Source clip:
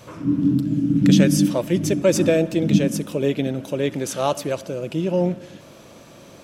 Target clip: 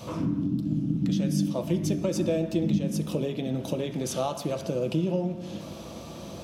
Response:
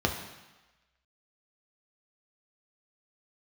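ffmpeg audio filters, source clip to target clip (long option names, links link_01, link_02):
-filter_complex "[0:a]equalizer=frequency=410:width_type=o:width=0.99:gain=-4.5,acompressor=threshold=-31dB:ratio=6,asplit=2[link_01][link_02];[1:a]atrim=start_sample=2205,afade=type=out:start_time=0.32:duration=0.01,atrim=end_sample=14553[link_03];[link_02][link_03]afir=irnorm=-1:irlink=0,volume=-11dB[link_04];[link_01][link_04]amix=inputs=2:normalize=0"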